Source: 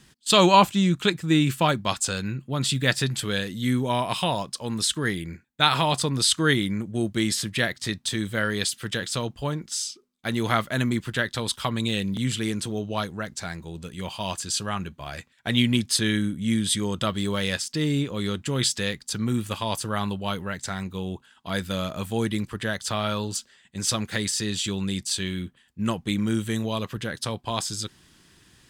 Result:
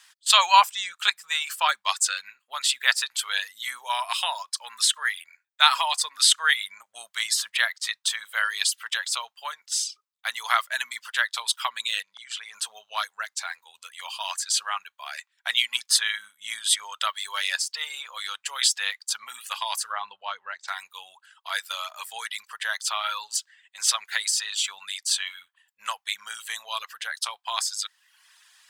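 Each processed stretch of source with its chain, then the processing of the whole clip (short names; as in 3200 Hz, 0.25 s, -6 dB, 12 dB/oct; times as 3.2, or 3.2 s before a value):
12.02–12.54 LPF 7100 Hz + level quantiser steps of 17 dB
19.92–20.68 Bessel low-pass 4700 Hz, order 4 + tilt shelf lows +7.5 dB, about 840 Hz
whole clip: reverb removal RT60 0.74 s; inverse Chebyshev high-pass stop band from 350 Hz, stop band 50 dB; gain +3.5 dB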